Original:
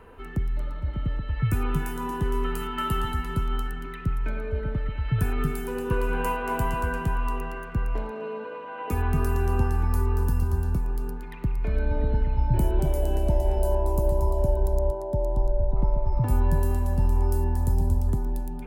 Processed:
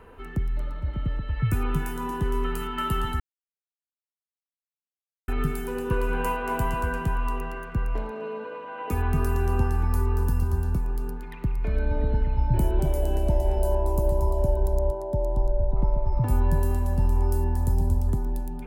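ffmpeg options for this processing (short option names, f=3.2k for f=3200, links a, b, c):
-filter_complex "[0:a]asplit=3[a][b][c];[a]atrim=end=3.2,asetpts=PTS-STARTPTS,afade=t=out:st=3.196:d=0.004:c=hsin[d];[b]atrim=start=3.2:end=5.28,asetpts=PTS-STARTPTS,volume=0[e];[c]atrim=start=5.28,asetpts=PTS-STARTPTS,afade=t=in:d=0.004:c=hsin[f];[d][e][f]concat=n=3:v=0:a=1"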